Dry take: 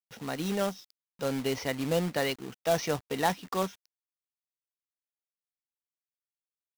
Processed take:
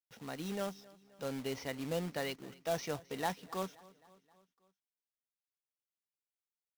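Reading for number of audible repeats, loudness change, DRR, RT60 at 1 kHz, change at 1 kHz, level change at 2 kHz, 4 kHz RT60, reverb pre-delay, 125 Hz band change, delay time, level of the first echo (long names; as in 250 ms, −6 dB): 3, −8.5 dB, no reverb audible, no reverb audible, −8.5 dB, −8.5 dB, no reverb audible, no reverb audible, −8.5 dB, 263 ms, −22.0 dB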